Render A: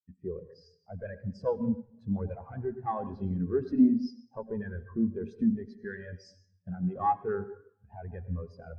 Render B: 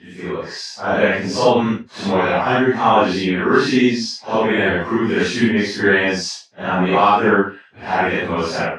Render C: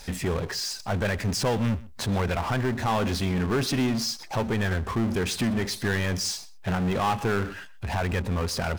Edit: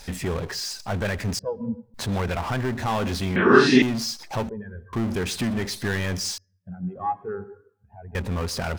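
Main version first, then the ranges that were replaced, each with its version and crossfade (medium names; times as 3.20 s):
C
1.39–1.94 s: from A
3.36–3.82 s: from B
4.49–4.93 s: from A
6.38–8.15 s: from A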